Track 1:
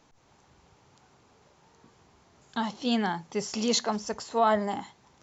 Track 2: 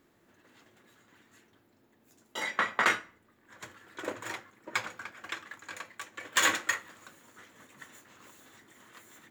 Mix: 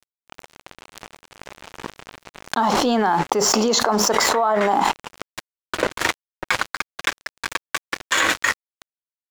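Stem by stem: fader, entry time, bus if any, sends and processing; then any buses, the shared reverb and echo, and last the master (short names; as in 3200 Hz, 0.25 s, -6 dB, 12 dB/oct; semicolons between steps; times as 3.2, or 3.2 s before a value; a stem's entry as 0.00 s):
+1.0 dB, 0.00 s, no send, HPF 330 Hz 12 dB/oct; resonant high shelf 1700 Hz -8 dB, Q 1.5
-15.5 dB, 1.75 s, no send, Bessel low-pass 6500 Hz, order 2; low shelf 150 Hz -4.5 dB; notches 60/120/180/240/300/360 Hz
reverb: off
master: crossover distortion -54.5 dBFS; fast leveller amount 100%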